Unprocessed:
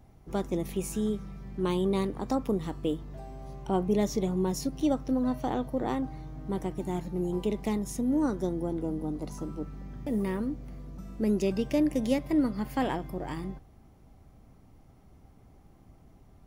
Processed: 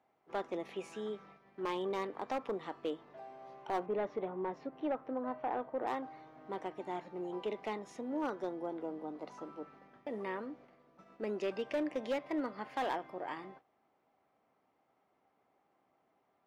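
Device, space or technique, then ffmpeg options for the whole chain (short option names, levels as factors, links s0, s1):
walkie-talkie: -filter_complex "[0:a]highpass=560,lowpass=2700,asoftclip=type=hard:threshold=0.0355,agate=range=0.447:threshold=0.00141:ratio=16:detection=peak,asettb=1/sr,asplit=3[s0][s1][s2];[s0]atrim=end=3.864[s3];[s1]atrim=start=3.86:end=5.87,asetpts=PTS-STARTPTS,afade=t=in:d=0.004:c=qsin,afade=t=out:st=2.006:d=0.004:c=qsin,lowpass=1900[s4];[s2]atrim=start=5.866[s5];[s3][s4]acrossfade=d=0.004:c1=hsin:c2=qsin[s6];[s6][s5]acrossfade=d=0.004:c1=qsin:c2=hsin"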